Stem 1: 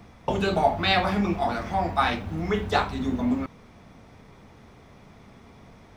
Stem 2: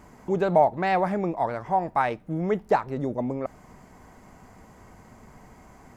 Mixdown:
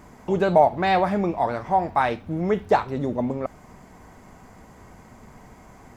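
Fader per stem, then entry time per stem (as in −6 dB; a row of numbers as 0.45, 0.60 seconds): −10.0, +2.5 decibels; 0.00, 0.00 seconds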